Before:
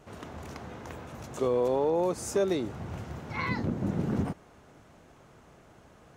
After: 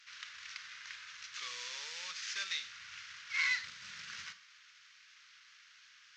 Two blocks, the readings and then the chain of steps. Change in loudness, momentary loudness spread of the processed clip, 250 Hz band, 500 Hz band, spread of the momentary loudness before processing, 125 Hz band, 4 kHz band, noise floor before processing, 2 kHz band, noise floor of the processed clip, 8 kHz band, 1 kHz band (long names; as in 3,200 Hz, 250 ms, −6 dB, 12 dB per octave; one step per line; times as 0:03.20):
−9.5 dB, 25 LU, below −40 dB, −37.5 dB, 16 LU, below −35 dB, +7.5 dB, −57 dBFS, +4.0 dB, −62 dBFS, −2.0 dB, −15.5 dB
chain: variable-slope delta modulation 32 kbit/s
inverse Chebyshev high-pass filter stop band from 820 Hz, stop band 40 dB
four-comb reverb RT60 0.34 s, combs from 33 ms, DRR 12 dB
level +5 dB